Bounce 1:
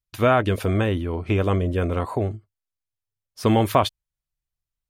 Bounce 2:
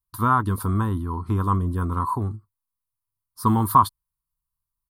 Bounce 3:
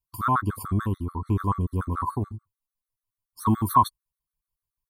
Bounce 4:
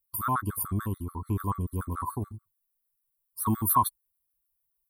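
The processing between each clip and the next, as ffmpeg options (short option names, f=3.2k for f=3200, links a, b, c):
-af "firequalizer=gain_entry='entry(230,0);entry(610,-21);entry(1000,11);entry(1600,-7);entry(2400,-24);entry(4300,-3);entry(6200,-10);entry(9800,7)':delay=0.05:min_phase=1"
-af "afftfilt=real='re*gt(sin(2*PI*6.9*pts/sr)*(1-2*mod(floor(b*sr/1024/1100),2)),0)':imag='im*gt(sin(2*PI*6.9*pts/sr)*(1-2*mod(floor(b*sr/1024/1100),2)),0)':win_size=1024:overlap=0.75"
-af "aexciter=amount=5.7:drive=5.3:freq=8.8k,volume=-5dB"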